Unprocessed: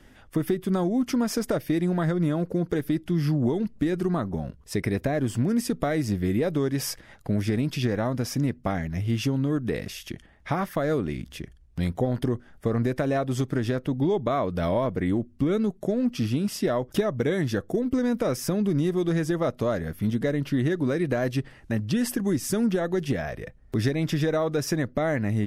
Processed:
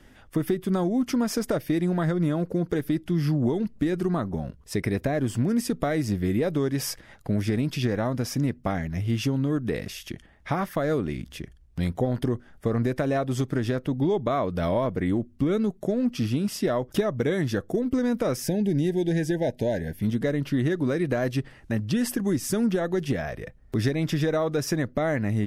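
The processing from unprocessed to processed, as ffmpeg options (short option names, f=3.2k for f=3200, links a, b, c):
-filter_complex "[0:a]asettb=1/sr,asplit=3[a][b][c];[a]atrim=end=18.424[d];[b]atrim=start=18.42:end=20.02,asetpts=PTS-STARTPTS,afade=t=in:d=0.004:c=qsin,afade=t=out:st=1.596:d=0.004:c=qsin,asuperstop=centerf=1200:order=20:qfactor=2.1[e];[c]atrim=start=20.016[f];[d][e]acrossfade=d=0.004:c1=hsin:c2=qsin[g];[g][f]acrossfade=d=0.004:c1=qsin:c2=hsin"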